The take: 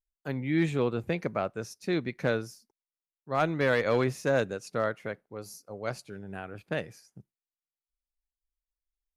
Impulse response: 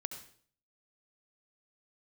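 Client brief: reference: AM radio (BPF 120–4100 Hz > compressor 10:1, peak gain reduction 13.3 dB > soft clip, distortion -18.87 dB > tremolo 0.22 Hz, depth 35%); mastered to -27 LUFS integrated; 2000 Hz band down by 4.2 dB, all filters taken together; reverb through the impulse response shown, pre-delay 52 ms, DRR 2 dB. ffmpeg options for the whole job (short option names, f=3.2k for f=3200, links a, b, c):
-filter_complex "[0:a]equalizer=f=2k:t=o:g=-5.5,asplit=2[a][b];[1:a]atrim=start_sample=2205,adelay=52[c];[b][c]afir=irnorm=-1:irlink=0,volume=-1dB[d];[a][d]amix=inputs=2:normalize=0,highpass=120,lowpass=4.1k,acompressor=threshold=-32dB:ratio=10,asoftclip=threshold=-28dB,tremolo=f=0.22:d=0.35,volume=13.5dB"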